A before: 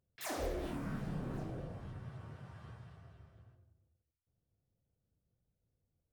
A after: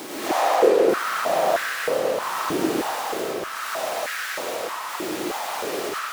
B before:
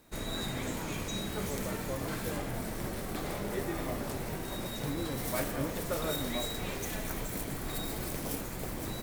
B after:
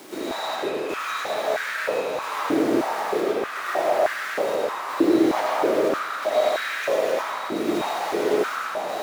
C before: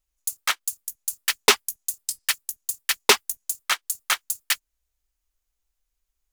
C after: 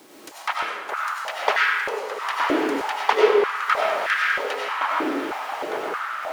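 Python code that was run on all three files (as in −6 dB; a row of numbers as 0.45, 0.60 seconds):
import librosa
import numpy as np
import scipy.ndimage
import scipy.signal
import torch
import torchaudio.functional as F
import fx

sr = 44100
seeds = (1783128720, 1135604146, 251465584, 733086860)

y = fx.self_delay(x, sr, depth_ms=0.14)
y = fx.notch(y, sr, hz=7900.0, q=12.0)
y = fx.env_lowpass_down(y, sr, base_hz=2400.0, full_db=-25.0)
y = fx.high_shelf(y, sr, hz=4200.0, db=-5.5)
y = fx.dmg_noise_colour(y, sr, seeds[0], colour='pink', level_db=-49.0)
y = fx.step_gate(y, sr, bpm=135, pattern='xxxxx...xxxx', floor_db=-12.0, edge_ms=4.5)
y = fx.echo_diffused(y, sr, ms=1024, feedback_pct=41, wet_db=-6.5)
y = fx.echo_pitch(y, sr, ms=179, semitones=-7, count=3, db_per_echo=-6.0)
y = fx.rev_freeverb(y, sr, rt60_s=2.0, hf_ratio=0.5, predelay_ms=55, drr_db=-4.5)
y = fx.filter_held_highpass(y, sr, hz=3.2, low_hz=330.0, high_hz=1600.0)
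y = y * 10.0 ** (-24 / 20.0) / np.sqrt(np.mean(np.square(y)))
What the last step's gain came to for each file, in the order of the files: +12.5, +4.0, −2.0 decibels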